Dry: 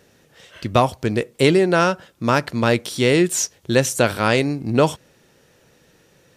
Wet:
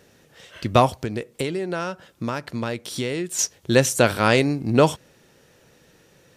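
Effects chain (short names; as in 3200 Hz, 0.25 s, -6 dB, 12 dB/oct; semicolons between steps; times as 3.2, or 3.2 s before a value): 0.96–3.39 compressor 5:1, threshold -25 dBFS, peak gain reduction 13.5 dB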